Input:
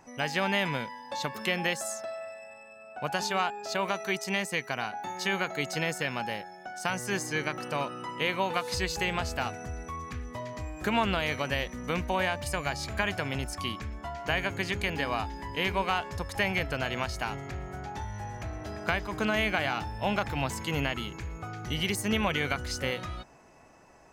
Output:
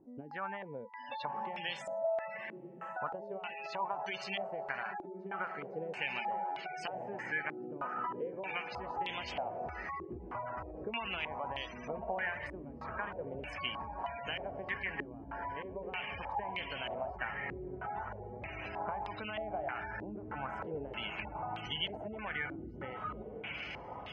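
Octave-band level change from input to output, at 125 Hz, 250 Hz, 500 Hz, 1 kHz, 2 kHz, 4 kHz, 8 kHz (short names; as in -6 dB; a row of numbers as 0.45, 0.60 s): -14.0 dB, -12.0 dB, -7.0 dB, -5.5 dB, -8.5 dB, -9.0 dB, under -25 dB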